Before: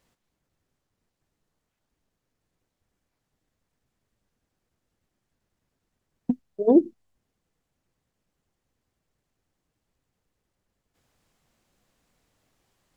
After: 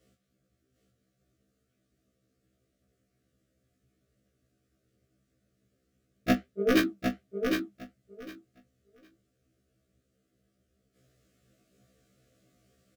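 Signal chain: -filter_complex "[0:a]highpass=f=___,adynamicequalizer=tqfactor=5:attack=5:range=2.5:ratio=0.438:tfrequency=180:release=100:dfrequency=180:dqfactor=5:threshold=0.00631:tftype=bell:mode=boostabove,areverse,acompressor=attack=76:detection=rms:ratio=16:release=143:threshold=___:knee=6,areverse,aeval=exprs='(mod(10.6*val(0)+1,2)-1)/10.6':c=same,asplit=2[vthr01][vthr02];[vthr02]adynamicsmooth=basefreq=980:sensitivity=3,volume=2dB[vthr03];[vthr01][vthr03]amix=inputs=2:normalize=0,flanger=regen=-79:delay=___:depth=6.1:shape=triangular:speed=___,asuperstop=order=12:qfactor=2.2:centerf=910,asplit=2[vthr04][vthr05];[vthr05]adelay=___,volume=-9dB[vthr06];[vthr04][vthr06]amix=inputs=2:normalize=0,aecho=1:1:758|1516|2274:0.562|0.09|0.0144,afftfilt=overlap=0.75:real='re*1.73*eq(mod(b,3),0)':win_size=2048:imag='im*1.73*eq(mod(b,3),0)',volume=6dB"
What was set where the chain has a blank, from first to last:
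70, -27dB, 2.3, 1.5, 25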